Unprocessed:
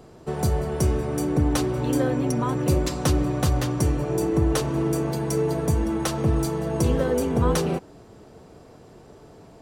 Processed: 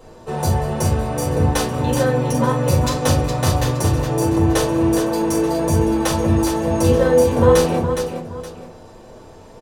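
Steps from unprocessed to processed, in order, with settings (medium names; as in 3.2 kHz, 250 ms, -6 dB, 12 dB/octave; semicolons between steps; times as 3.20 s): bass shelf 240 Hz -6.5 dB; multi-tap echo 42/414/882 ms -7.5/-7/-17 dB; reverberation RT60 0.25 s, pre-delay 3 ms, DRR -3 dB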